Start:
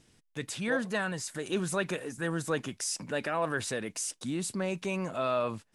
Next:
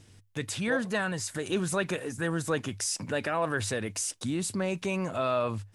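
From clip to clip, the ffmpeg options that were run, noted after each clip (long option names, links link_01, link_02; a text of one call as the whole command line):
ffmpeg -i in.wav -filter_complex "[0:a]equalizer=frequency=100:width_type=o:width=0.27:gain=15,asplit=2[link_01][link_02];[link_02]acompressor=threshold=-38dB:ratio=6,volume=-3dB[link_03];[link_01][link_03]amix=inputs=2:normalize=0" out.wav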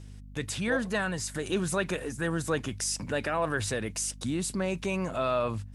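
ffmpeg -i in.wav -af "aeval=exprs='val(0)+0.00562*(sin(2*PI*50*n/s)+sin(2*PI*2*50*n/s)/2+sin(2*PI*3*50*n/s)/3+sin(2*PI*4*50*n/s)/4+sin(2*PI*5*50*n/s)/5)':channel_layout=same" out.wav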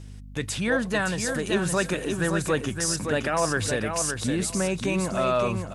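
ffmpeg -i in.wav -af "aecho=1:1:566|1132|1698:0.501|0.0902|0.0162,volume=4dB" out.wav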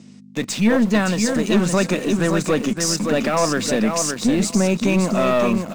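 ffmpeg -i in.wav -filter_complex "[0:a]highpass=frequency=170:width=0.5412,highpass=frequency=170:width=1.3066,equalizer=frequency=220:width_type=q:width=4:gain=9,equalizer=frequency=420:width_type=q:width=4:gain=-3,equalizer=frequency=850:width_type=q:width=4:gain=-4,equalizer=frequency=1600:width_type=q:width=4:gain=-8,equalizer=frequency=3200:width_type=q:width=4:gain=-5,lowpass=frequency=7600:width=0.5412,lowpass=frequency=7600:width=1.3066,aeval=exprs='(tanh(8.91*val(0)+0.35)-tanh(0.35))/8.91':channel_layout=same,asplit=2[link_01][link_02];[link_02]aeval=exprs='val(0)*gte(abs(val(0)),0.0168)':channel_layout=same,volume=-5dB[link_03];[link_01][link_03]amix=inputs=2:normalize=0,volume=5.5dB" out.wav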